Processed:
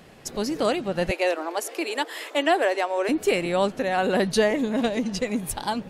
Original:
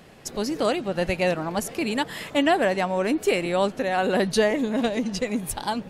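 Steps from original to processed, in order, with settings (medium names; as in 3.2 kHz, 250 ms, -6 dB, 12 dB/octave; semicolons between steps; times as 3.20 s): 1.11–3.09 s: steep high-pass 310 Hz 48 dB/octave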